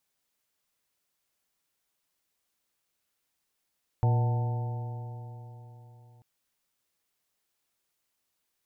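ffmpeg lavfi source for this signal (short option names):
-f lavfi -i "aevalsrc='0.1*pow(10,-3*t/3.83)*sin(2*PI*117.2*t)+0.01*pow(10,-3*t/3.83)*sin(2*PI*235.59*t)+0.0106*pow(10,-3*t/3.83)*sin(2*PI*356.33*t)+0.0141*pow(10,-3*t/3.83)*sin(2*PI*480.56*t)+0.01*pow(10,-3*t/3.83)*sin(2*PI*609.36*t)+0.0168*pow(10,-3*t/3.83)*sin(2*PI*743.72*t)+0.0178*pow(10,-3*t/3.83)*sin(2*PI*884.6*t)':d=2.19:s=44100"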